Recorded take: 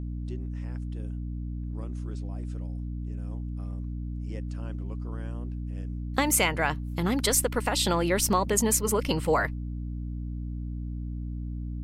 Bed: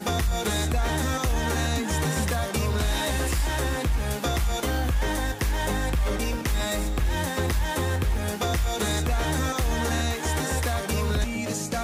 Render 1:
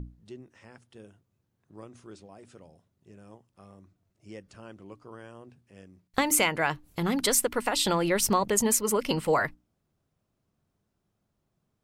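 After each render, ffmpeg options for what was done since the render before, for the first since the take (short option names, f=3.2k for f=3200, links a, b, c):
-af "bandreject=f=60:t=h:w=6,bandreject=f=120:t=h:w=6,bandreject=f=180:t=h:w=6,bandreject=f=240:t=h:w=6,bandreject=f=300:t=h:w=6"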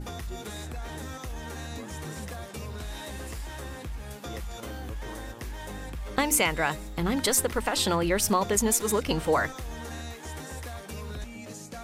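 -filter_complex "[1:a]volume=-12.5dB[a];[0:a][a]amix=inputs=2:normalize=0"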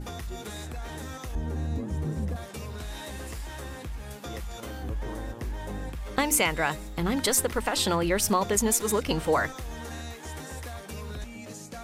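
-filter_complex "[0:a]asettb=1/sr,asplit=3[a][b][c];[a]atrim=end=1.354[d];[b]atrim=start=1.35:end=2.36,asetpts=PTS-STARTPTS,afade=t=in:d=0.004:c=qsin,afade=t=out:st=1.006:d=0.004:c=qsin,tiltshelf=f=660:g=10[e];[c]atrim=start=2.356[f];[d][e]acrossfade=d=0.004:c1=hsin:c2=qsin[g];[g][f]acrossfade=d=0.004:c1=qsin:c2=hsin,asettb=1/sr,asplit=3[h][i][j];[h]atrim=end=4.834[k];[i]atrim=start=4.83:end=5.9,asetpts=PTS-STARTPTS,afade=t=in:d=0.004:c=qsin,afade=t=out:st=1.066:d=0.004:c=qsin,tiltshelf=f=1.1k:g=4.5[l];[j]atrim=start=5.896[m];[k][l]acrossfade=d=0.004:c1=hsin:c2=qsin[n];[n][m]acrossfade=d=0.004:c1=qsin:c2=hsin"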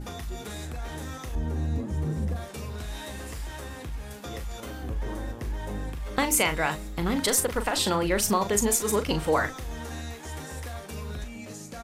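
-filter_complex "[0:a]asplit=2[a][b];[b]adelay=39,volume=-9.5dB[c];[a][c]amix=inputs=2:normalize=0"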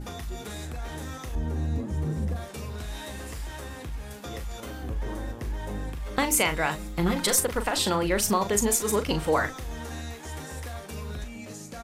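-filter_complex "[0:a]asettb=1/sr,asplit=3[a][b][c];[a]atrim=end=6.784[d];[b]atrim=start=6.78:end=7.39,asetpts=PTS-STARTPTS,afade=t=in:d=0.004:c=qsin,afade=t=out:st=0.606:d=0.004:c=qsin,aecho=1:1:5.7:0.65,atrim=end_sample=26901[e];[c]atrim=start=7.386[f];[d][e]acrossfade=d=0.004:c1=hsin:c2=qsin[g];[g][f]acrossfade=d=0.004:c1=qsin:c2=hsin"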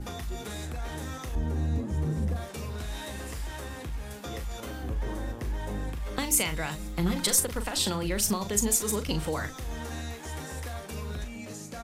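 -filter_complex "[0:a]acrossover=split=240|3000[a][b][c];[b]acompressor=threshold=-34dB:ratio=3[d];[a][d][c]amix=inputs=3:normalize=0"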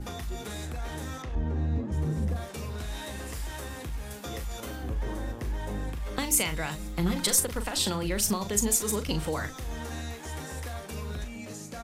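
-filter_complex "[0:a]asettb=1/sr,asplit=3[a][b][c];[a]atrim=end=1.224[d];[b]atrim=start=1.22:end=1.92,asetpts=PTS-STARTPTS,afade=t=in:d=0.004:c=qsin,afade=t=out:st=0.696:d=0.004:c=qsin,adynamicsmooth=sensitivity=6.5:basefreq=3.4k[e];[c]atrim=start=1.916[f];[d][e]acrossfade=d=0.004:c1=hsin:c2=qsin[g];[g][f]acrossfade=d=0.004:c1=qsin:c2=hsin,asettb=1/sr,asplit=3[h][i][j];[h]atrim=end=3.334[k];[i]atrim=start=3.33:end=4.76,asetpts=PTS-STARTPTS,afade=t=in:d=0.004:c=qsin,afade=t=out:st=1.426:d=0.004:c=qsin,highshelf=f=6.3k:g=4.5[l];[j]atrim=start=4.756[m];[k][l]acrossfade=d=0.004:c1=hsin:c2=qsin[n];[n][m]acrossfade=d=0.004:c1=qsin:c2=hsin"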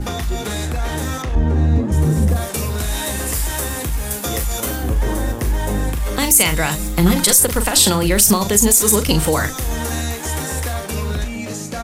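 -filter_complex "[0:a]acrossover=split=7600[a][b];[b]dynaudnorm=f=160:g=17:m=10.5dB[c];[a][c]amix=inputs=2:normalize=0,alimiter=level_in=13.5dB:limit=-1dB:release=50:level=0:latency=1"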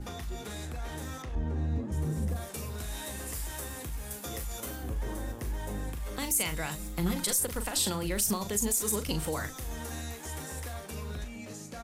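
-af "volume=-16dB"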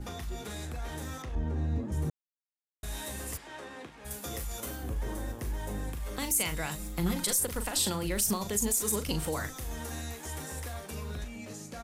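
-filter_complex "[0:a]asplit=3[a][b][c];[a]afade=t=out:st=3.36:d=0.02[d];[b]highpass=240,lowpass=3.2k,afade=t=in:st=3.36:d=0.02,afade=t=out:st=4.04:d=0.02[e];[c]afade=t=in:st=4.04:d=0.02[f];[d][e][f]amix=inputs=3:normalize=0,asplit=3[g][h][i];[g]atrim=end=2.1,asetpts=PTS-STARTPTS,afade=t=out:st=2.096:d=0.004:c=hsin[j];[h]atrim=start=2.1:end=2.83,asetpts=PTS-STARTPTS,volume=0[k];[i]atrim=start=2.83,asetpts=PTS-STARTPTS,afade=t=in:d=0.004:c=hsin[l];[j][k][l]concat=n=3:v=0:a=1"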